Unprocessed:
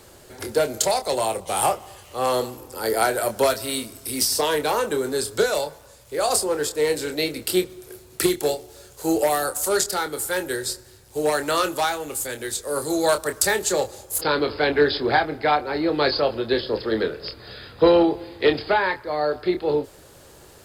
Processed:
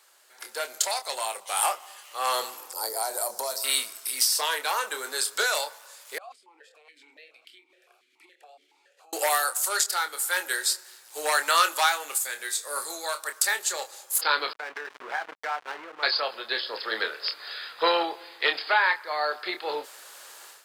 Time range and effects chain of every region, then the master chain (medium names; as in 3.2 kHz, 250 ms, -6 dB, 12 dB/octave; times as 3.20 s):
2.73–3.64 s: high-order bell 2.1 kHz -15.5 dB + hum notches 60/120/180/240/300/360/420/480/540 Hz + compression 4:1, threshold -24 dBFS
6.18–9.13 s: compression 8:1, threshold -35 dBFS + stepped vowel filter 7.1 Hz
12.18–13.20 s: bass shelf 120 Hz +8 dB + band-stop 3 kHz, Q 16 + feedback comb 53 Hz, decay 0.3 s
14.53–16.03 s: low-pass 2.2 kHz 24 dB/octave + hysteresis with a dead band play -21.5 dBFS + compression 4:1, threshold -29 dBFS
whole clip: Chebyshev high-pass 1.2 kHz, order 2; level rider gain up to 14 dB; trim -7.5 dB